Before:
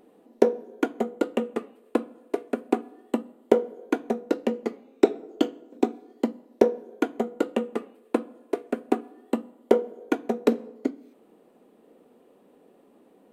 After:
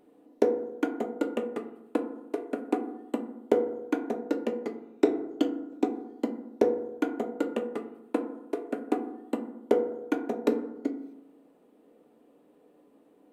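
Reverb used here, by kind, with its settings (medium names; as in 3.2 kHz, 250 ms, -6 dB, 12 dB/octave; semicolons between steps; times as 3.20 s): FDN reverb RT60 0.91 s, low-frequency decay 1.3×, high-frequency decay 0.25×, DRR 5.5 dB; trim -5.5 dB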